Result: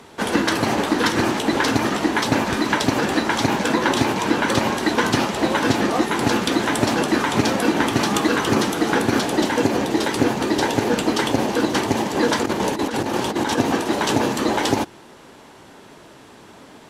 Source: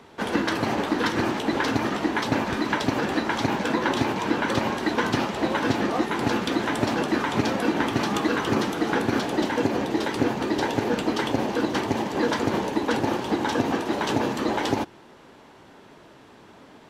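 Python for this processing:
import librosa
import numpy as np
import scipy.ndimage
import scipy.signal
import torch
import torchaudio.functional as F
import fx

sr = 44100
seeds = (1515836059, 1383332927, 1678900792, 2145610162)

y = fx.peak_eq(x, sr, hz=9700.0, db=8.5, octaves=1.5)
y = fx.over_compress(y, sr, threshold_db=-26.0, ratio=-0.5, at=(12.43, 13.58))
y = F.gain(torch.from_numpy(y), 4.5).numpy()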